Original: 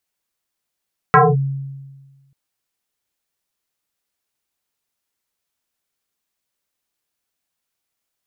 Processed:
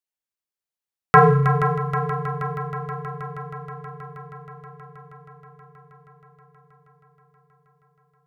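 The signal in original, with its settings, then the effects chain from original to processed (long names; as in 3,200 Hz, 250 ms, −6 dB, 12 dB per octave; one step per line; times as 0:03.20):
two-operator FM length 1.19 s, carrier 137 Hz, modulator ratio 2.18, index 5.4, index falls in 0.22 s linear, decay 1.42 s, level −5 dB
noise gate −45 dBFS, range −14 dB
echo machine with several playback heads 159 ms, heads second and third, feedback 74%, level −11 dB
four-comb reverb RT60 0.87 s, combs from 32 ms, DRR 9 dB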